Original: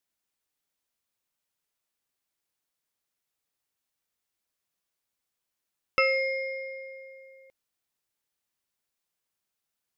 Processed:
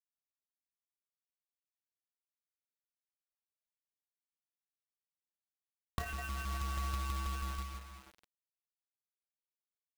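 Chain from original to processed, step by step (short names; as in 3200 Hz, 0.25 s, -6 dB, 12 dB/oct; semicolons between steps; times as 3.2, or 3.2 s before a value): reverb RT60 2.6 s, pre-delay 4 ms, DRR -3 dB; AM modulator 260 Hz, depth 35%; LFO low-pass saw up 6.2 Hz 690–3000 Hz; compressor 16:1, threshold -37 dBFS, peak gain reduction 21 dB; dynamic EQ 560 Hz, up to +5 dB, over -55 dBFS, Q 1.4; ring modulator 600 Hz; tilt shelf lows +5 dB, about 760 Hz; companded quantiser 4-bit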